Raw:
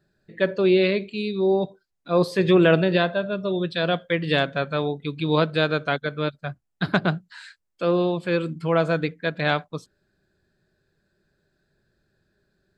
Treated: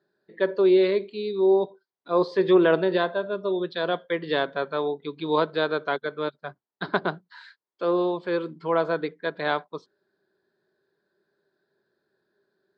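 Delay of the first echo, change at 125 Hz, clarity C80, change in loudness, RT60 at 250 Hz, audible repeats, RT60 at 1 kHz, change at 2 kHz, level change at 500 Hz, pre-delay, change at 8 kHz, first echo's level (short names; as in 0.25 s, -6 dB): none, -12.5 dB, none, -2.0 dB, none, none, none, -4.5 dB, -0.5 dB, none, n/a, none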